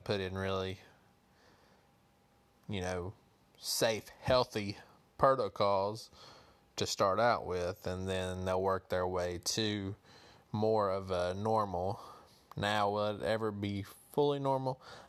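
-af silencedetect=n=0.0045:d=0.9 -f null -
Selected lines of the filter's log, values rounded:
silence_start: 0.80
silence_end: 2.69 | silence_duration: 1.89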